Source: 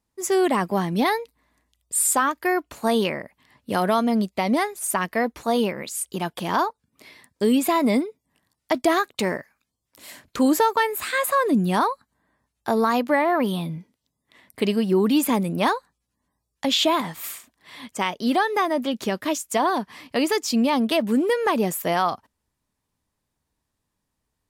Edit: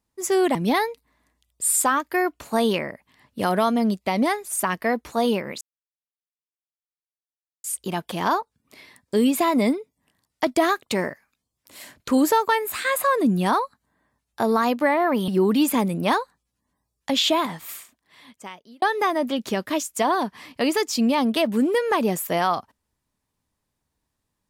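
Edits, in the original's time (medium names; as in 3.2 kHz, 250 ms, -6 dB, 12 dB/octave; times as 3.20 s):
0.55–0.86 s: delete
5.92 s: insert silence 2.03 s
13.56–14.83 s: delete
16.78–18.37 s: fade out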